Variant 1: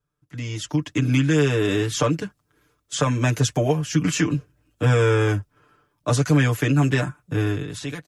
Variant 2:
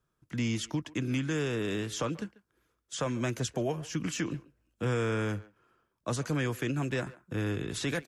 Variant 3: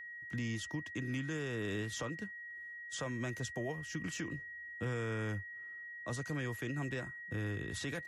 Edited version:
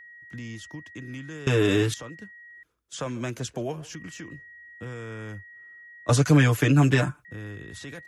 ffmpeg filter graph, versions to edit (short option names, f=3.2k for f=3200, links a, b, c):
-filter_complex "[0:a]asplit=2[a][b];[2:a]asplit=4[c][d][e][f];[c]atrim=end=1.472[g];[a]atrim=start=1.468:end=1.942[h];[d]atrim=start=1.938:end=2.632[i];[1:a]atrim=start=2.628:end=3.952[j];[e]atrim=start=3.948:end=6.092[k];[b]atrim=start=6.088:end=7.252[l];[f]atrim=start=7.248[m];[g][h]acrossfade=d=0.004:c1=hsin:c2=hsin[n];[n][i]acrossfade=d=0.004:c1=hsin:c2=hsin[o];[o][j]acrossfade=d=0.004:c1=hsin:c2=hsin[p];[p][k]acrossfade=d=0.004:c1=hsin:c2=hsin[q];[q][l]acrossfade=d=0.004:c1=hsin:c2=hsin[r];[r][m]acrossfade=d=0.004:c1=hsin:c2=hsin"